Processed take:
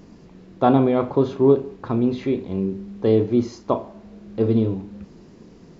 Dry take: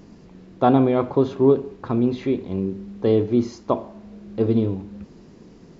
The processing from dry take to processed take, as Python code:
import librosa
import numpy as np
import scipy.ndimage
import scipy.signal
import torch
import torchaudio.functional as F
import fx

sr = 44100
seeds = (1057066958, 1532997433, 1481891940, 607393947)

y = fx.doubler(x, sr, ms=36.0, db=-12)